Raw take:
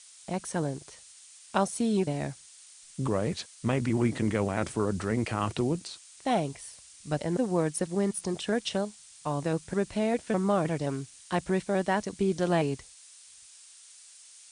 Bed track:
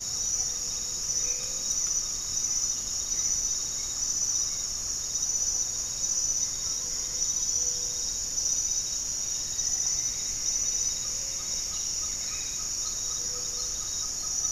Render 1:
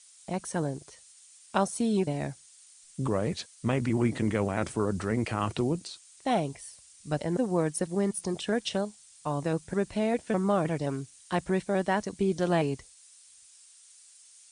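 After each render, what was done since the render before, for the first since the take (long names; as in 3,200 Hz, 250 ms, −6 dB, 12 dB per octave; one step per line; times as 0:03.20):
broadband denoise 6 dB, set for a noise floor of −53 dBFS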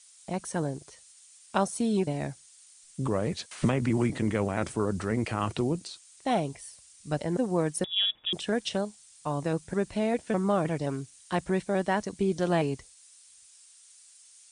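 0:03.51–0:04.10: multiband upward and downward compressor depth 100%
0:07.84–0:08.33: voice inversion scrambler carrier 3,600 Hz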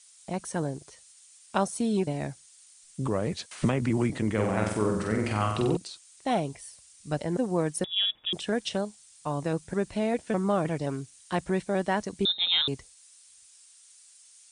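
0:04.33–0:05.77: flutter between parallel walls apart 8 metres, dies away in 0.76 s
0:12.25–0:12.68: voice inversion scrambler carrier 3,900 Hz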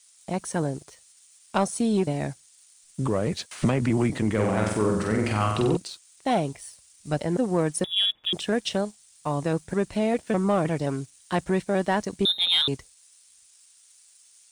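leveller curve on the samples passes 1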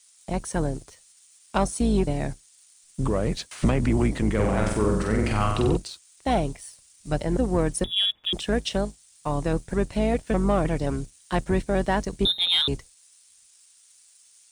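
sub-octave generator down 2 octaves, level −2 dB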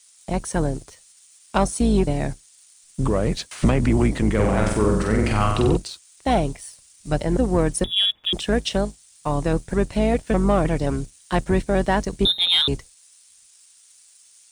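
level +3.5 dB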